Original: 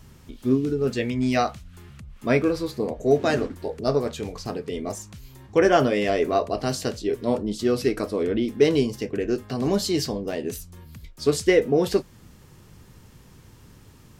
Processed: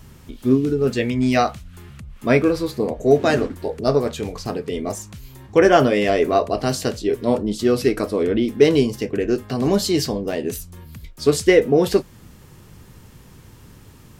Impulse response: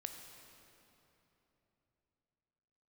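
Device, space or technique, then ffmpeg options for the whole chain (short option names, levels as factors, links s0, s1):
exciter from parts: -filter_complex "[0:a]asplit=2[s0][s1];[s1]highpass=4400,asoftclip=type=tanh:threshold=0.0473,highpass=4900,volume=0.251[s2];[s0][s2]amix=inputs=2:normalize=0,volume=1.68"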